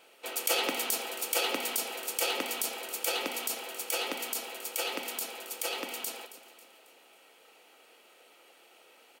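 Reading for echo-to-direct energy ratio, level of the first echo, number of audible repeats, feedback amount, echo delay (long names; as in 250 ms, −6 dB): −14.0 dB, −15.0 dB, 3, 46%, 272 ms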